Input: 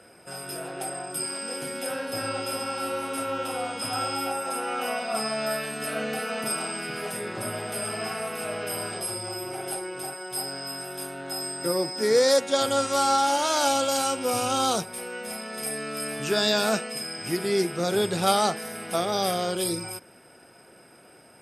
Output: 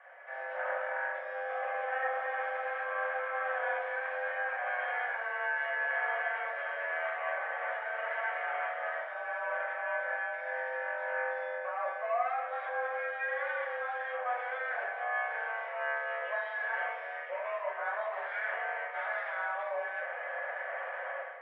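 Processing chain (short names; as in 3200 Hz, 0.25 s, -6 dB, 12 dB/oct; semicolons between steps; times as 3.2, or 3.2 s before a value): minimum comb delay 0.63 ms; AGC gain up to 16.5 dB; limiter -8.5 dBFS, peak gain reduction 7.5 dB; reverse; compressor 16:1, threshold -32 dBFS, peak gain reduction 19 dB; reverse; FDN reverb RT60 0.72 s, low-frequency decay 0.8×, high-frequency decay 0.55×, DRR -5.5 dB; mistuned SSB +240 Hz 320–2100 Hz; gain -3.5 dB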